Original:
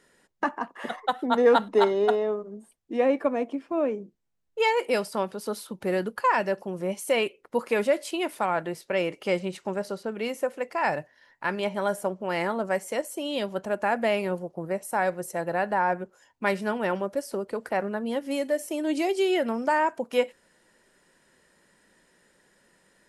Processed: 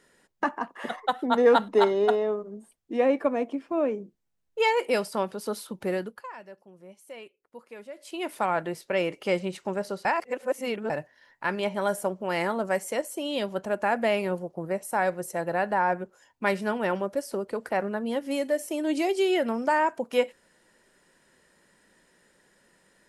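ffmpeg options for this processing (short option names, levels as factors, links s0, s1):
-filter_complex "[0:a]asettb=1/sr,asplit=3[s0][s1][s2];[s0]atrim=end=11.814[s3];[s1]atrim=start=11.81:end=12.91,asetpts=PTS-STARTPTS,afade=t=in:d=0.004:c=qsin,afade=t=out:st=1.096:d=0.004:c=qsin,highshelf=f=5500:g=4[s4];[s2]atrim=start=12.906[s5];[s3][s4]acrossfade=d=0.004:c1=hsin:c2=qsin[s6];[s6][s5]acrossfade=d=0.004:c1=qsin:c2=hsin,asplit=5[s7][s8][s9][s10][s11];[s7]atrim=end=6.27,asetpts=PTS-STARTPTS,afade=t=out:st=5.82:d=0.45:silence=0.112202[s12];[s8]atrim=start=6.27:end=7.95,asetpts=PTS-STARTPTS,volume=0.112[s13];[s9]atrim=start=7.95:end=10.052,asetpts=PTS-STARTPTS,afade=t=in:d=0.45:silence=0.112202[s14];[s10]atrim=start=10.048:end=10.902,asetpts=PTS-STARTPTS,areverse[s15];[s11]atrim=start=10.898[s16];[s12][s13][s14]concat=n=3:v=0:a=1[s17];[s17][s15]acrossfade=d=0.004:c1=hsin:c2=hsin[s18];[s18][s16]acrossfade=d=0.004:c1=hsin:c2=hsin"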